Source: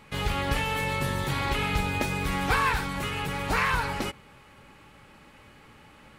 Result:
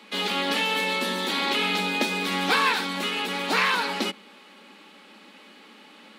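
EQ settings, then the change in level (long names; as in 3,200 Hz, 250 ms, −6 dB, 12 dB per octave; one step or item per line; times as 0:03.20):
Butterworth high-pass 190 Hz 96 dB per octave
low-shelf EQ 500 Hz +5.5 dB
parametric band 3,800 Hz +11 dB 1.1 octaves
0.0 dB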